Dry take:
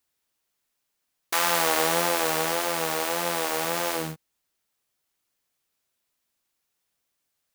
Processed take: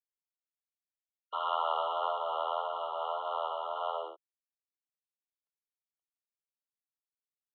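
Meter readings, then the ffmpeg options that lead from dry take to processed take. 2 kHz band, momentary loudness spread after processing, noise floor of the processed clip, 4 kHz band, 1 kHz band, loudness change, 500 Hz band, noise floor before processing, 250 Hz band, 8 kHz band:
under -25 dB, 6 LU, under -85 dBFS, -14.0 dB, -4.0 dB, -9.5 dB, -8.0 dB, -79 dBFS, under -30 dB, under -40 dB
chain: -filter_complex "[0:a]acrossover=split=880|1600[s0][s1][s2];[s0]asoftclip=type=tanh:threshold=0.0422[s3];[s3][s1][s2]amix=inputs=3:normalize=0,aeval=exprs='val(0)*sin(2*PI*41*n/s)':c=same,acrusher=bits=10:mix=0:aa=0.000001,highpass=f=330:t=q:w=0.5412,highpass=f=330:t=q:w=1.307,lowpass=f=2600:t=q:w=0.5176,lowpass=f=2600:t=q:w=0.7071,lowpass=f=2600:t=q:w=1.932,afreqshift=140,afftfilt=real='re*eq(mod(floor(b*sr/1024/1400),2),0)':imag='im*eq(mod(floor(b*sr/1024/1400),2),0)':win_size=1024:overlap=0.75"

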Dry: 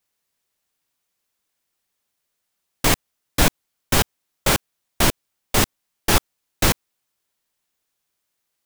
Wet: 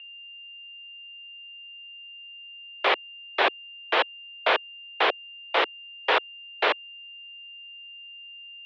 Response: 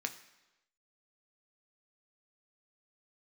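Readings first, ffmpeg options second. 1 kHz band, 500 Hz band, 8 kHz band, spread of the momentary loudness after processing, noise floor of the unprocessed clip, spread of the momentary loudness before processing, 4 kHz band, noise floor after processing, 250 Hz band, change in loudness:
+0.5 dB, -1.0 dB, under -35 dB, 16 LU, -77 dBFS, 5 LU, -3.0 dB, -44 dBFS, -16.5 dB, -4.5 dB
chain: -af "aeval=exprs='val(0)+0.00891*sin(2*PI*2700*n/s)':c=same,highpass=f=340:t=q:w=0.5412,highpass=f=340:t=q:w=1.307,lowpass=f=3400:t=q:w=0.5176,lowpass=f=3400:t=q:w=0.7071,lowpass=f=3400:t=q:w=1.932,afreqshift=95"

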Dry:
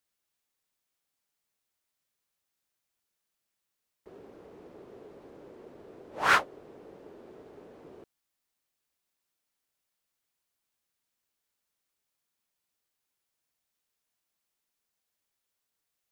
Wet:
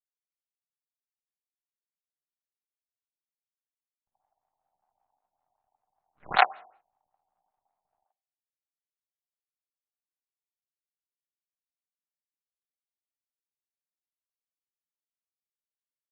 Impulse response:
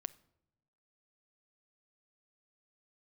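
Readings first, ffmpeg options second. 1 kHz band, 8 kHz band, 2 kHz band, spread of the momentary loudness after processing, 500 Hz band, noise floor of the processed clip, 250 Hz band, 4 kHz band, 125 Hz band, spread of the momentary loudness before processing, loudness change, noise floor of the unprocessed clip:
+3.0 dB, under -25 dB, -2.0 dB, 3 LU, 0.0 dB, under -85 dBFS, -9.5 dB, +0.5 dB, -5.0 dB, 4 LU, +0.5 dB, -84 dBFS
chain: -filter_complex "[0:a]aeval=exprs='0.316*(cos(1*acos(clip(val(0)/0.316,-1,1)))-cos(1*PI/2))+0.158*(cos(3*acos(clip(val(0)/0.316,-1,1)))-cos(3*PI/2))+0.01*(cos(4*acos(clip(val(0)/0.316,-1,1)))-cos(4*PI/2))+0.0316*(cos(5*acos(clip(val(0)/0.316,-1,1)))-cos(5*PI/2))+0.0112*(cos(6*acos(clip(val(0)/0.316,-1,1)))-cos(6*PI/2))':c=same,asplit=2[s0][s1];[s1]highpass=f=740:t=q:w=4.9[s2];[1:a]atrim=start_sample=2205,afade=t=out:st=0.43:d=0.01,atrim=end_sample=19404,adelay=79[s3];[s2][s3]afir=irnorm=-1:irlink=0,volume=3.35[s4];[s0][s4]amix=inputs=2:normalize=0,afftfilt=real='re*lt(b*sr/1024,950*pow(4500/950,0.5+0.5*sin(2*PI*5.2*pts/sr)))':imag='im*lt(b*sr/1024,950*pow(4500/950,0.5+0.5*sin(2*PI*5.2*pts/sr)))':win_size=1024:overlap=0.75"

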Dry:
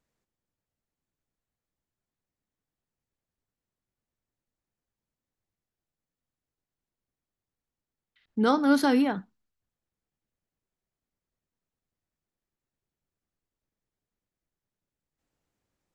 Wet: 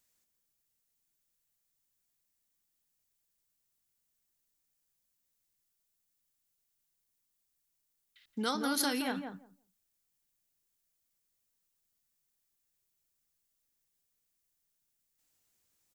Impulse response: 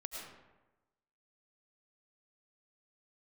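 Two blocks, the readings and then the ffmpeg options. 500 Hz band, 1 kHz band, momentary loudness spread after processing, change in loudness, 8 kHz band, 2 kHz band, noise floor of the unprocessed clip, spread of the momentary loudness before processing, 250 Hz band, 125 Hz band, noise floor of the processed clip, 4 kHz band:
-11.0 dB, -8.5 dB, 15 LU, -9.0 dB, +7.0 dB, -5.5 dB, under -85 dBFS, 14 LU, -12.0 dB, no reading, -81 dBFS, +1.0 dB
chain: -filter_complex "[0:a]acompressor=threshold=0.0562:ratio=6,asplit=2[s0][s1];[s1]adelay=172,lowpass=f=810:p=1,volume=0.631,asplit=2[s2][s3];[s3]adelay=172,lowpass=f=810:p=1,volume=0.16,asplit=2[s4][s5];[s5]adelay=172,lowpass=f=810:p=1,volume=0.16[s6];[s2][s4][s6]amix=inputs=3:normalize=0[s7];[s0][s7]amix=inputs=2:normalize=0,crystalizer=i=9.5:c=0,volume=0.398"

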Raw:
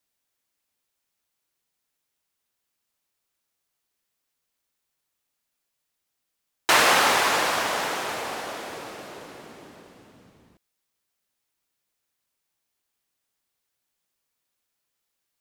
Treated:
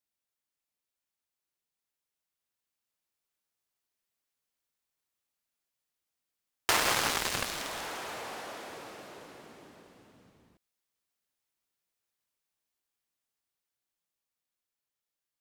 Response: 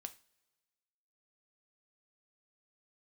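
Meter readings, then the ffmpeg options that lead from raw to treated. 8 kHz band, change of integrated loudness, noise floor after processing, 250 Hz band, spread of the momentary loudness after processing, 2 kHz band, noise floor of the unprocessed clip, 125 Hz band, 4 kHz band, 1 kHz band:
-6.0 dB, -9.5 dB, under -85 dBFS, -8.0 dB, 21 LU, -10.5 dB, -80 dBFS, -3.0 dB, -8.0 dB, -11.5 dB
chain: -af "dynaudnorm=f=650:g=9:m=1.68,aeval=exprs='0.708*(cos(1*acos(clip(val(0)/0.708,-1,1)))-cos(1*PI/2))+0.158*(cos(7*acos(clip(val(0)/0.708,-1,1)))-cos(7*PI/2))':c=same,acompressor=threshold=0.112:ratio=2.5,volume=0.531"

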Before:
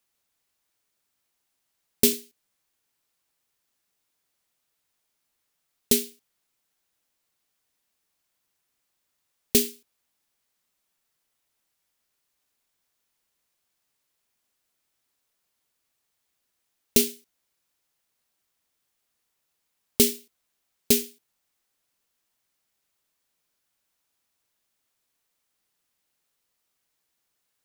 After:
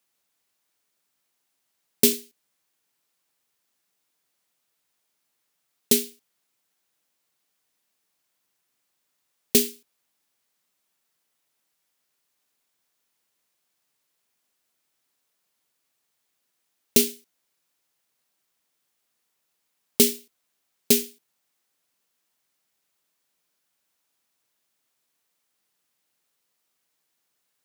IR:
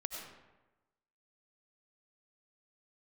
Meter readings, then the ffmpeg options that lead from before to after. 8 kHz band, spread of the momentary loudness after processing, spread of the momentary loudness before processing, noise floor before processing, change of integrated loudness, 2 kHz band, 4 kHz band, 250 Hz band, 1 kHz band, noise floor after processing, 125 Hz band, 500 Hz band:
+1.5 dB, 13 LU, 13 LU, -78 dBFS, +1.5 dB, +1.5 dB, +1.5 dB, +1.0 dB, +1.5 dB, -77 dBFS, -0.5 dB, +1.5 dB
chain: -af "highpass=120,volume=1.19"

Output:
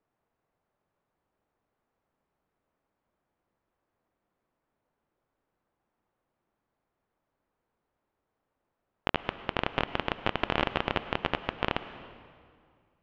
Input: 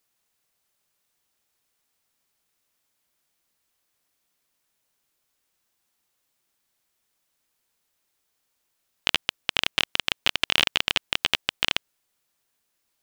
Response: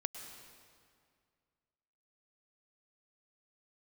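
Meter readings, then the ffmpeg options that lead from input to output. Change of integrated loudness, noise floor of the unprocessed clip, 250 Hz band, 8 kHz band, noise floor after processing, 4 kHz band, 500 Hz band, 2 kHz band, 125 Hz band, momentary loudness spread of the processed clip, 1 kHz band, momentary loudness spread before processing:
-8.0 dB, -76 dBFS, +6.0 dB, under -25 dB, -84 dBFS, -14.5 dB, +5.5 dB, -7.5 dB, +6.0 dB, 8 LU, +2.5 dB, 5 LU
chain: -filter_complex "[0:a]lowpass=1000,asplit=2[s0][s1];[1:a]atrim=start_sample=2205[s2];[s1][s2]afir=irnorm=-1:irlink=0,volume=1.06[s3];[s0][s3]amix=inputs=2:normalize=0"

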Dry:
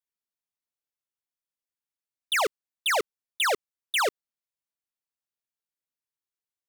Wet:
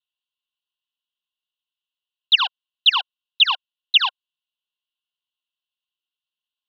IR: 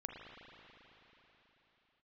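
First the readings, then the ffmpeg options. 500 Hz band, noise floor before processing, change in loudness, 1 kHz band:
under -25 dB, under -85 dBFS, +9.0 dB, +1.5 dB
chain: -filter_complex "[0:a]asplit=3[s0][s1][s2];[s0]bandpass=f=730:t=q:w=8,volume=1[s3];[s1]bandpass=f=1090:t=q:w=8,volume=0.501[s4];[s2]bandpass=f=2440:t=q:w=8,volume=0.355[s5];[s3][s4][s5]amix=inputs=3:normalize=0,aexciter=amount=10.9:drive=8.4:freq=2400,highpass=f=230:t=q:w=0.5412,highpass=f=230:t=q:w=1.307,lowpass=f=3500:t=q:w=0.5176,lowpass=f=3500:t=q:w=0.7071,lowpass=f=3500:t=q:w=1.932,afreqshift=330,volume=2.37"

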